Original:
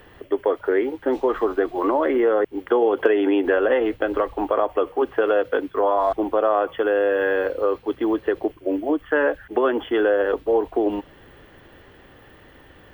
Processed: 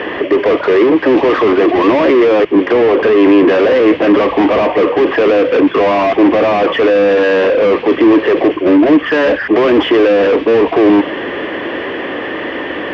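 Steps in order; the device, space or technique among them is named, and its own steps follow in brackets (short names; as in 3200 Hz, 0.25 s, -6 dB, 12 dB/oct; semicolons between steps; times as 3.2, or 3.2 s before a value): overdrive pedal into a guitar cabinet (overdrive pedal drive 41 dB, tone 1800 Hz, clips at -4.5 dBFS; speaker cabinet 85–4300 Hz, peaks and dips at 95 Hz -8 dB, 140 Hz -9 dB, 310 Hz +5 dB, 820 Hz -7 dB, 1400 Hz -9 dB, 4000 Hz -9 dB); 2.72–3.49 high shelf 5500 Hz -8 dB; gain +2 dB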